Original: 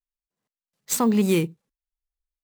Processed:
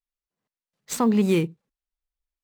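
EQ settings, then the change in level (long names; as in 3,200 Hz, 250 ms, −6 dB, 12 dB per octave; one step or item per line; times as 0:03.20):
high-shelf EQ 6,400 Hz −10.5 dB
0.0 dB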